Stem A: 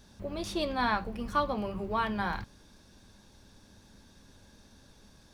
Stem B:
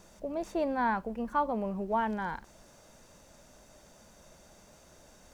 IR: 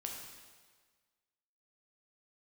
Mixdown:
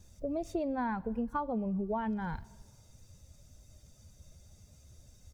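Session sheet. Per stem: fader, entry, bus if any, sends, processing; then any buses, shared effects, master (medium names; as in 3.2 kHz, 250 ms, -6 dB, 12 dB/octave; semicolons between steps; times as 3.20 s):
-14.5 dB, 0.00 s, no send, auto duck -9 dB, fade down 0.20 s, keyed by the second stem
+1.5 dB, 0.4 ms, send -19.5 dB, expander on every frequency bin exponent 1.5; peaking EQ 87 Hz +6.5 dB 1.2 oct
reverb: on, RT60 1.5 s, pre-delay 6 ms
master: bass shelf 480 Hz +9 dB; compression 6:1, threshold -31 dBFS, peak gain reduction 11 dB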